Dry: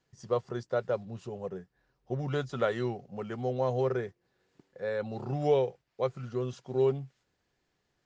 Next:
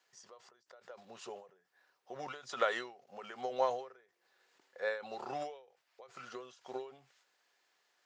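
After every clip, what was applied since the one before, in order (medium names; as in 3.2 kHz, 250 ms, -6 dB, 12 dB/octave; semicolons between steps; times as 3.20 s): high-pass 770 Hz 12 dB/octave; endings held to a fixed fall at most 110 dB/s; trim +5.5 dB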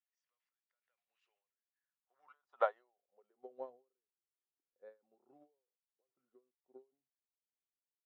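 band-pass sweep 2.3 kHz -> 290 Hz, 1.64–3.61 s; upward expansion 2.5:1, over -54 dBFS; trim +8 dB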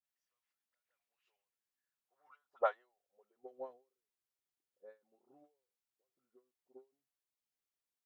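phase dispersion highs, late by 42 ms, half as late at 1.2 kHz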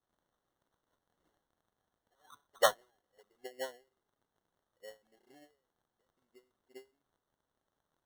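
crackle 500 per s -76 dBFS; sample-and-hold 18×; trim +5.5 dB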